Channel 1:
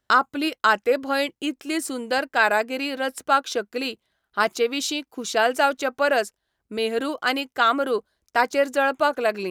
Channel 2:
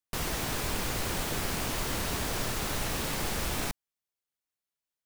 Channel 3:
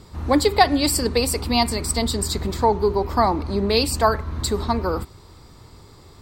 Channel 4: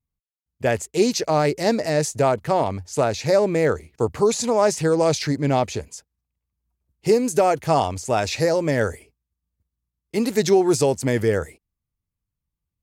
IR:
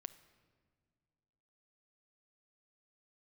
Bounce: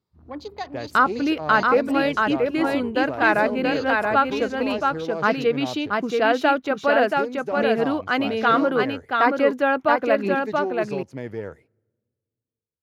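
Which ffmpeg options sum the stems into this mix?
-filter_complex "[0:a]bass=f=250:g=10,treble=f=4k:g=-14,adelay=850,volume=0.5dB,asplit=2[a][b];[b]volume=-3.5dB[c];[2:a]afwtdn=0.0355,volume=-17.5dB[d];[3:a]aeval=exprs='if(lt(val(0),0),0.708*val(0),val(0))':c=same,aemphasis=mode=reproduction:type=75kf,adelay=100,volume=-11dB,asplit=2[e][f];[f]volume=-16dB[g];[4:a]atrim=start_sample=2205[h];[g][h]afir=irnorm=-1:irlink=0[i];[c]aecho=0:1:679:1[j];[a][d][e][i][j]amix=inputs=5:normalize=0,highpass=100,equalizer=f=8.1k:t=o:w=0.33:g=-11.5"

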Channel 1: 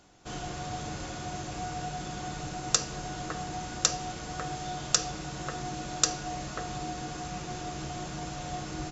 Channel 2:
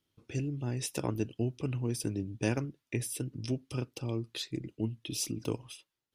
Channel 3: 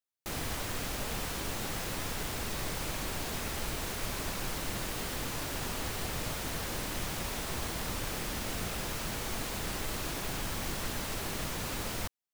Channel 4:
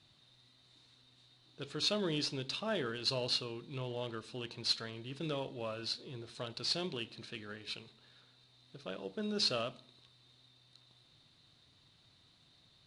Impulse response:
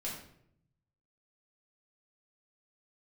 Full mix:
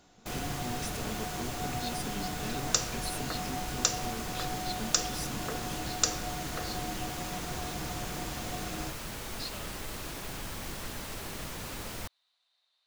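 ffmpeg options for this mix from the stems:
-filter_complex "[0:a]volume=-4dB,asplit=2[a][b];[b]volume=-7.5dB[c];[1:a]aecho=1:1:4.6:0.97,asoftclip=type=tanh:threshold=-32dB,volume=-3.5dB[d];[2:a]volume=-3.5dB[e];[3:a]highpass=f=650:w=0.5412,highpass=f=650:w=1.3066,volume=-9dB[f];[4:a]atrim=start_sample=2205[g];[c][g]afir=irnorm=-1:irlink=0[h];[a][d][e][f][h]amix=inputs=5:normalize=0"

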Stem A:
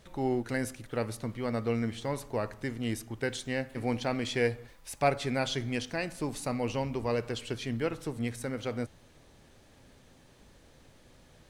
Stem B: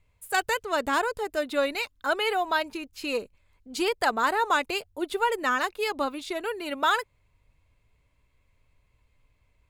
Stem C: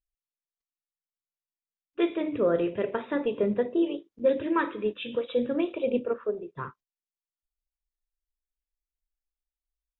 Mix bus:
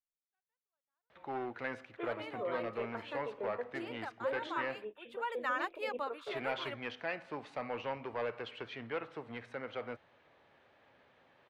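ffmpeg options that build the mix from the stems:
-filter_complex "[0:a]highpass=91,asoftclip=type=hard:threshold=-26dB,lowpass=3.5k,adelay=1100,volume=-0.5dB,asplit=3[a][b][c];[a]atrim=end=4.85,asetpts=PTS-STARTPTS,afade=t=out:st=4.846:d=0.004:c=hsin[d];[b]atrim=start=4.85:end=6.27,asetpts=PTS-STARTPTS,volume=0[e];[c]atrim=start=6.27,asetpts=PTS-STARTPTS,afade=t=in:d=0.004:c=hsin[f];[d][e][f]concat=n=3:v=0:a=1[g];[1:a]volume=-8.5dB,afade=t=in:st=5.08:d=0.35:silence=0.334965[h];[2:a]lowpass=2.5k,volume=-9.5dB,asplit=2[i][j];[j]apad=whole_len=427692[k];[h][k]sidechaingate=range=-49dB:threshold=-55dB:ratio=16:detection=peak[l];[g][l][i]amix=inputs=3:normalize=0,acrossover=split=490 3300:gain=0.178 1 0.178[m][n][o];[m][n][o]amix=inputs=3:normalize=0"

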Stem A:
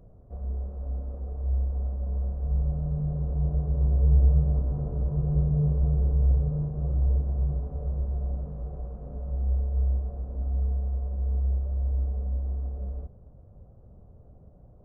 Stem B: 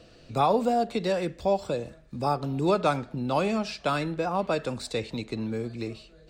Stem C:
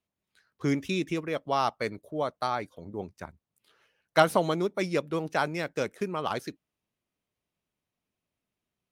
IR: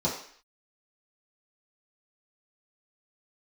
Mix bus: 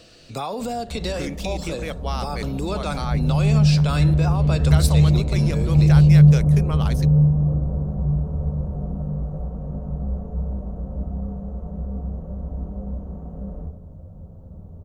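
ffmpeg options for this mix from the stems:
-filter_complex "[0:a]adelay=600,volume=2.5dB,asplit=2[a][b];[b]volume=-8dB[c];[1:a]volume=1.5dB[d];[2:a]adelay=550,volume=-1.5dB[e];[d][e]amix=inputs=2:normalize=0,alimiter=limit=-20dB:level=0:latency=1:release=76,volume=0dB[f];[3:a]atrim=start_sample=2205[g];[c][g]afir=irnorm=-1:irlink=0[h];[a][f][h]amix=inputs=3:normalize=0,highshelf=f=2.9k:g=11"

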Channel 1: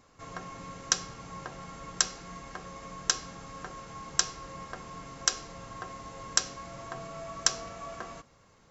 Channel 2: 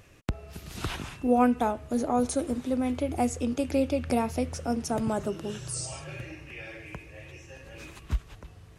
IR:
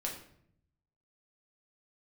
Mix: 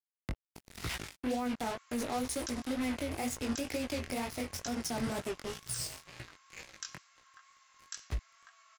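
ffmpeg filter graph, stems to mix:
-filter_complex "[0:a]highpass=f=1.3k:w=0.5412,highpass=f=1.3k:w=1.3066,adelay=1550,volume=-9.5dB[a];[1:a]equalizer=f=2k:t=o:w=0.33:g=11,equalizer=f=5k:t=o:w=0.33:g=7,equalizer=f=10k:t=o:w=0.33:g=5,acrusher=bits=4:mix=0:aa=0.5,adynamicequalizer=threshold=0.01:dfrequency=1600:dqfactor=0.7:tfrequency=1600:tqfactor=0.7:attack=5:release=100:ratio=0.375:range=2:mode=boostabove:tftype=highshelf,volume=-4dB[b];[a][b]amix=inputs=2:normalize=0,flanger=delay=16:depth=6.2:speed=2.1,lowshelf=f=160:g=3.5,alimiter=level_in=2dB:limit=-24dB:level=0:latency=1:release=59,volume=-2dB"

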